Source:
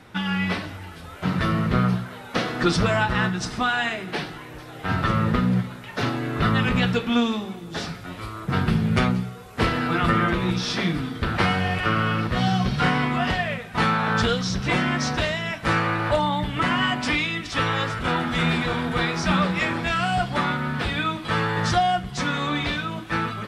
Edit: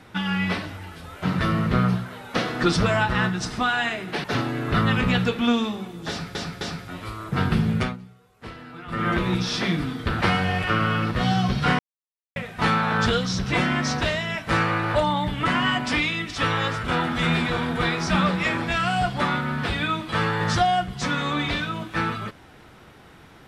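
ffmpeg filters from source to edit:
-filter_complex "[0:a]asplit=8[a][b][c][d][e][f][g][h];[a]atrim=end=4.242[i];[b]atrim=start=5.918:end=8.032[j];[c]atrim=start=7.768:end=8.032[k];[d]atrim=start=7.768:end=9.13,asetpts=PTS-STARTPTS,afade=t=out:st=1.102:d=0.26:silence=0.141254[l];[e]atrim=start=9.13:end=10.04,asetpts=PTS-STARTPTS,volume=-17dB[m];[f]atrim=start=10.04:end=12.95,asetpts=PTS-STARTPTS,afade=t=in:d=0.26:silence=0.141254,afade=t=out:st=2.906:d=0.004:c=hsin[n];[g]atrim=start=12.95:end=13.52,asetpts=PTS-STARTPTS,volume=0[o];[h]atrim=start=13.52,asetpts=PTS-STARTPTS,afade=t=in:d=0.004:c=hsin[p];[i][j]acrossfade=d=0.004:c1=hsin:c2=hsin[q];[q][k]acrossfade=d=0.004:c1=hsin:c2=hsin[r];[l][m][n][o][p]concat=n=5:v=0:a=1[s];[r][s]acrossfade=d=0.004:c1=hsin:c2=hsin"

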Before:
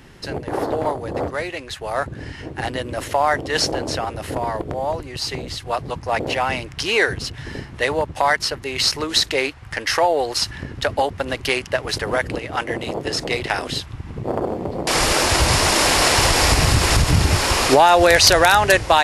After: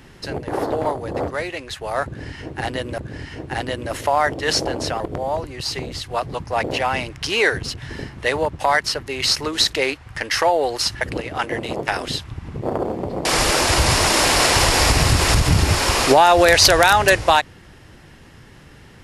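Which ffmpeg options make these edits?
-filter_complex "[0:a]asplit=5[a][b][c][d][e];[a]atrim=end=2.982[f];[b]atrim=start=2.048:end=4.072[g];[c]atrim=start=4.558:end=10.572[h];[d]atrim=start=12.188:end=13.052[i];[e]atrim=start=13.488[j];[f][g]acrossfade=d=0.004:c1=hsin:c2=hsin[k];[k][h]acrossfade=d=0.004:c1=hsin:c2=hsin[l];[l][i]acrossfade=d=0.004:c1=hsin:c2=hsin[m];[m][j]acrossfade=d=0.004:c1=hsin:c2=hsin"

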